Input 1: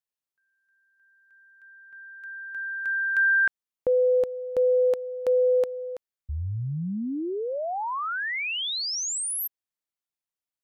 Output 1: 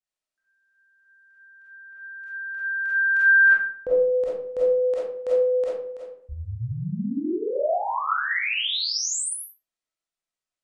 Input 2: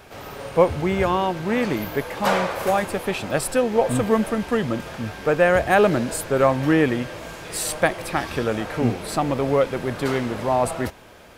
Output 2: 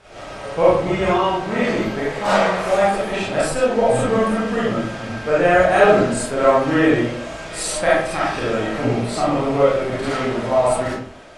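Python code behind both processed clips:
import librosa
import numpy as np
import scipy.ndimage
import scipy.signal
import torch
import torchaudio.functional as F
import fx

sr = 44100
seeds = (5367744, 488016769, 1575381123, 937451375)

y = scipy.signal.sosfilt(scipy.signal.butter(6, 9700.0, 'lowpass', fs=sr, output='sos'), x)
y = fx.rev_freeverb(y, sr, rt60_s=0.59, hf_ratio=0.65, predelay_ms=5, drr_db=-9.0)
y = y * librosa.db_to_amplitude(-5.5)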